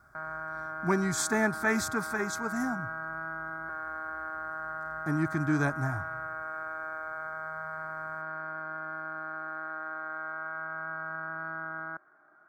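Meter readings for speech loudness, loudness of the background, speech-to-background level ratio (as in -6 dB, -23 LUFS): -31.0 LUFS, -37.0 LUFS, 6.0 dB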